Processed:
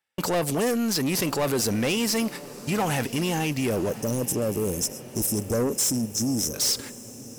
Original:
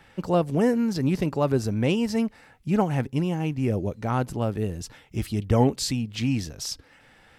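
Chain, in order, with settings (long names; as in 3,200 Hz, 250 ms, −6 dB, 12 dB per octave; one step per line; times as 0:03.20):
de-essing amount 55%
RIAA equalisation recording
noise gate −42 dBFS, range −44 dB
time-frequency box erased 0:03.89–0:06.54, 610–5,100 Hz
in parallel at −2.5 dB: compressor whose output falls as the input rises −36 dBFS, ratio −1
on the sum: soft clipping −25.5 dBFS, distortion −10 dB
on a send: feedback delay with all-pass diffusion 1,077 ms, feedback 51%, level −16 dB
on the sum: level +5.5 dB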